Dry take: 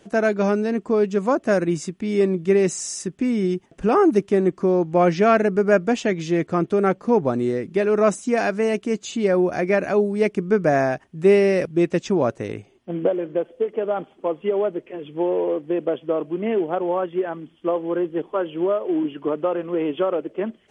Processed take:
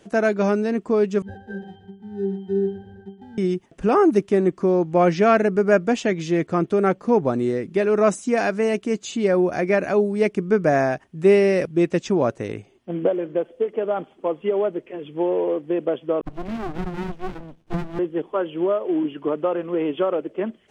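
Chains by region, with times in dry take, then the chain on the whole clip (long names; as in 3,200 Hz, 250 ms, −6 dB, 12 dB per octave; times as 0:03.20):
0:01.22–0:03.38: sample-rate reduction 1,100 Hz + resonances in every octave G, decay 0.35 s + single-tap delay 119 ms −12 dB
0:16.21–0:17.99: all-pass dispersion lows, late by 61 ms, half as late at 2,300 Hz + windowed peak hold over 65 samples
whole clip: no processing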